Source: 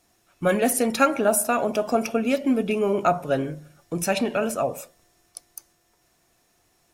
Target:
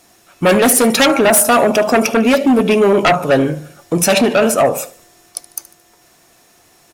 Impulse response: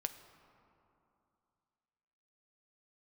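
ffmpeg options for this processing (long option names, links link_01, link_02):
-af "aecho=1:1:74|148|222:0.112|0.0482|0.0207,aeval=exprs='0.501*sin(PI/2*3.55*val(0)/0.501)':channel_layout=same,lowshelf=frequency=97:gain=-10.5"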